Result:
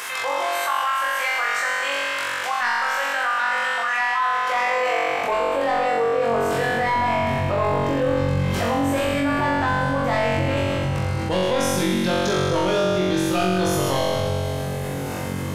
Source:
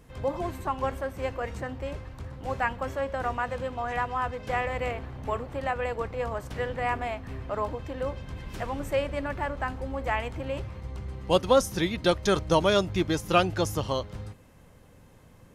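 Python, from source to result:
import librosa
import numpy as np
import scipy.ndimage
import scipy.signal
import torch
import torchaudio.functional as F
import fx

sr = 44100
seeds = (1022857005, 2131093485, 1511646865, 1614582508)

y = fx.rider(x, sr, range_db=4, speed_s=0.5)
y = fx.filter_sweep_highpass(y, sr, from_hz=1400.0, to_hz=110.0, start_s=3.95, end_s=7.21, q=1.1)
y = 10.0 ** (-22.5 / 20.0) * np.tanh(y / 10.0 ** (-22.5 / 20.0))
y = fx.room_flutter(y, sr, wall_m=3.7, rt60_s=1.4)
y = fx.env_flatten(y, sr, amount_pct=70)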